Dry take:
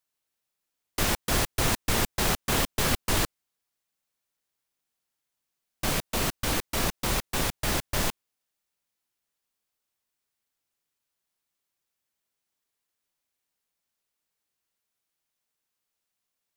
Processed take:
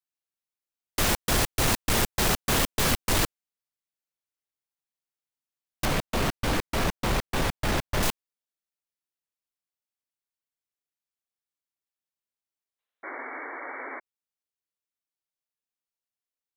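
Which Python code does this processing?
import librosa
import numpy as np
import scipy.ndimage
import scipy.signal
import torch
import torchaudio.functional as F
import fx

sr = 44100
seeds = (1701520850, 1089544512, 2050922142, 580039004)

y = fx.high_shelf(x, sr, hz=4400.0, db=-12.0, at=(5.85, 8.03))
y = fx.spec_box(y, sr, start_s=12.79, length_s=0.39, low_hz=410.0, high_hz=4100.0, gain_db=11)
y = fx.leveller(y, sr, passes=3)
y = fx.spec_paint(y, sr, seeds[0], shape='noise', start_s=13.03, length_s=0.97, low_hz=250.0, high_hz=2300.0, level_db=-31.0)
y = F.gain(torch.from_numpy(y), -6.5).numpy()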